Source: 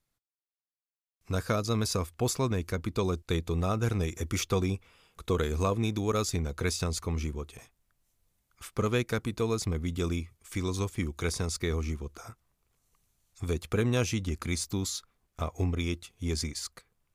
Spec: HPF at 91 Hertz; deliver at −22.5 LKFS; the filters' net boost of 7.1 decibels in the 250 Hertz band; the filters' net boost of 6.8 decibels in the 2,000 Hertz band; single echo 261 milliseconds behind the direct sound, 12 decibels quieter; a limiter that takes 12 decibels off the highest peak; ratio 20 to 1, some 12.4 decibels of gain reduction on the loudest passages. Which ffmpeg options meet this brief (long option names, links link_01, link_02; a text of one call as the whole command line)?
ffmpeg -i in.wav -af "highpass=91,equalizer=frequency=250:width_type=o:gain=9,equalizer=frequency=2000:width_type=o:gain=8.5,acompressor=threshold=-31dB:ratio=20,alimiter=level_in=5dB:limit=-24dB:level=0:latency=1,volume=-5dB,aecho=1:1:261:0.251,volume=18dB" out.wav